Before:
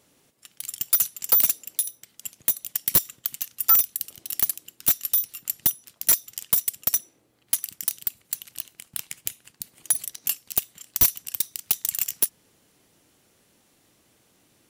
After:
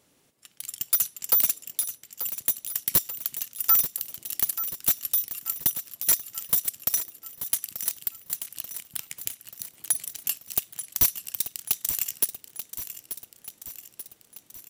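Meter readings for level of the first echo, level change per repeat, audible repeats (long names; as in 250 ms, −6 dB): −11.0 dB, −5.0 dB, 5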